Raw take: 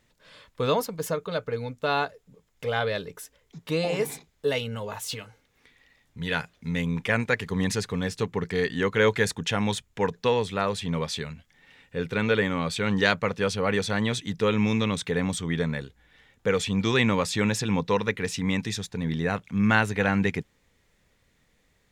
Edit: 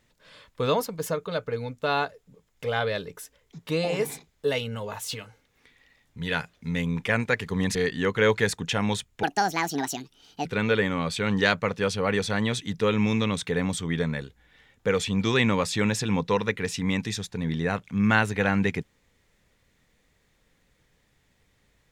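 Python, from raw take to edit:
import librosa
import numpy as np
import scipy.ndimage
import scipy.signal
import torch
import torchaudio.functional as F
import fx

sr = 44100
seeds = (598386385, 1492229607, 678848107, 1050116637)

y = fx.edit(x, sr, fx.cut(start_s=7.75, length_s=0.78),
    fx.speed_span(start_s=10.01, length_s=2.04, speed=1.67), tone=tone)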